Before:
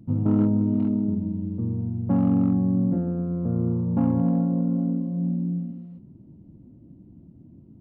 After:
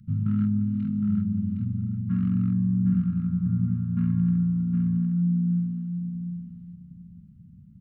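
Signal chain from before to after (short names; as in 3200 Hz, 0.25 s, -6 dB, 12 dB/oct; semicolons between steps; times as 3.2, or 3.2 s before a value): elliptic band-stop 200–1400 Hz, stop band 40 dB; on a send: feedback echo 0.762 s, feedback 18%, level -6.5 dB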